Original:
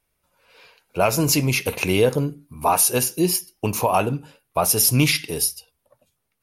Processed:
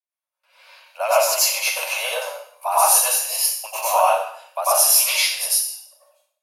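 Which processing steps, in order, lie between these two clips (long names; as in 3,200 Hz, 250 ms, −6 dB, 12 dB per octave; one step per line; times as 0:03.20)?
noise gate with hold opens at −52 dBFS
Butterworth high-pass 550 Hz 96 dB per octave
dynamic equaliser 2,200 Hz, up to −4 dB, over −38 dBFS, Q 3.4
dense smooth reverb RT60 0.62 s, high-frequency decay 0.95×, pre-delay 80 ms, DRR −8.5 dB
level −5 dB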